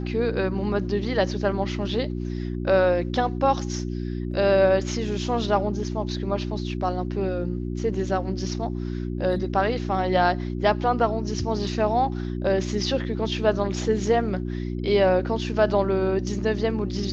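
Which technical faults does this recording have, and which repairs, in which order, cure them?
hum 60 Hz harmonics 6 -29 dBFS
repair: de-hum 60 Hz, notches 6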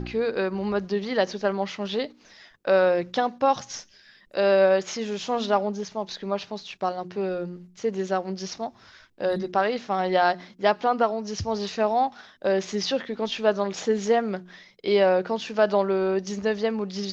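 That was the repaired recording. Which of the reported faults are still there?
nothing left

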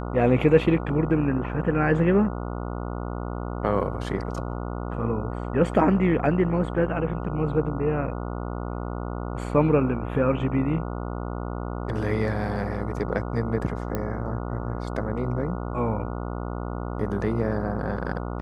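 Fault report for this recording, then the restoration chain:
buzz 60 Hz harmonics 24 -31 dBFS
13.95 s: pop -14 dBFS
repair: de-click; de-hum 60 Hz, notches 24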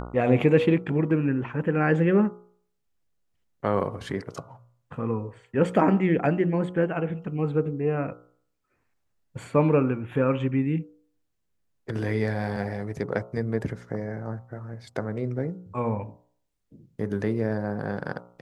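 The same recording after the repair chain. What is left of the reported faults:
nothing left

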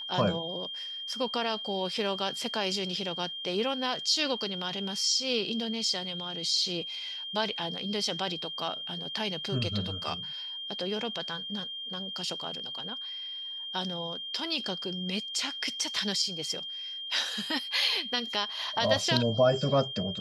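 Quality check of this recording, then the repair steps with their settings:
whine 3.2 kHz -36 dBFS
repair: band-stop 3.2 kHz, Q 30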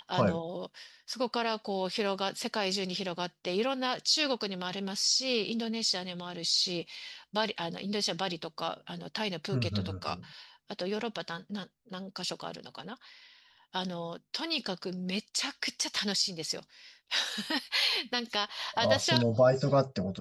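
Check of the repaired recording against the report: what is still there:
nothing left

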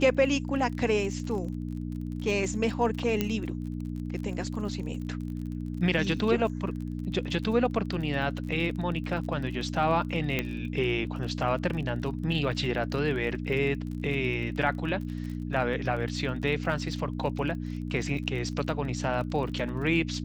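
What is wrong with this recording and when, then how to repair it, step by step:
crackle 32 per s -36 dBFS
hum 60 Hz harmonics 5 -34 dBFS
3.21 s: pop -12 dBFS
10.39 s: pop -13 dBFS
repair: de-click; de-hum 60 Hz, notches 5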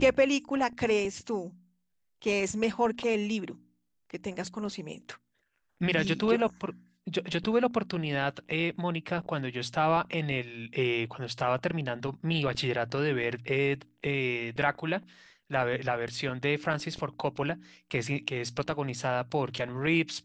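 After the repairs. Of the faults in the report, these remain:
nothing left

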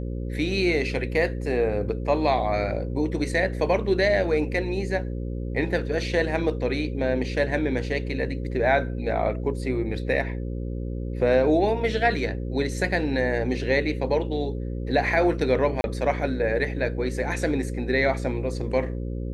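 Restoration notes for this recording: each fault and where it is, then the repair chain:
buzz 60 Hz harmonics 9 -30 dBFS
15.81–15.84 s: dropout 31 ms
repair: de-hum 60 Hz, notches 9; interpolate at 15.81 s, 31 ms

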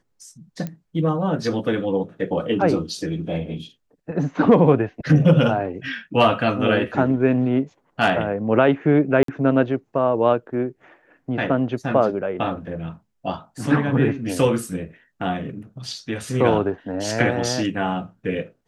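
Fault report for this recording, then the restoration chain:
0.67 s: pop -17 dBFS
9.23–9.28 s: dropout 53 ms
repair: de-click; interpolate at 9.23 s, 53 ms

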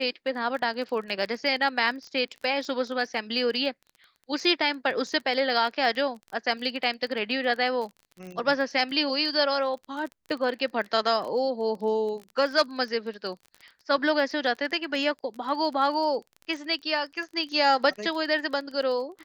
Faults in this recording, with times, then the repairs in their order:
crackle 21 per s -34 dBFS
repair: de-click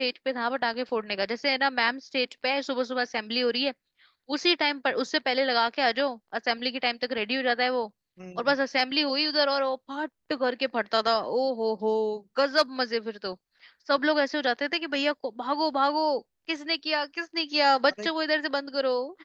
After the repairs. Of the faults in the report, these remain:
nothing left

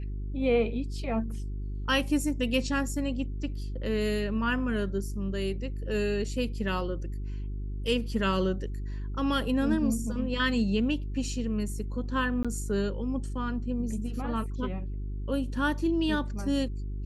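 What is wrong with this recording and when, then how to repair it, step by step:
hum 50 Hz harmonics 8 -34 dBFS
12.43–12.45 s: dropout 16 ms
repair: de-hum 50 Hz, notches 8; interpolate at 12.43 s, 16 ms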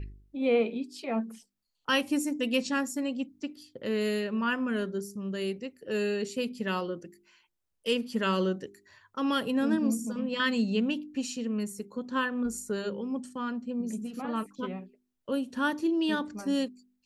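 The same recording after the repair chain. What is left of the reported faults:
nothing left

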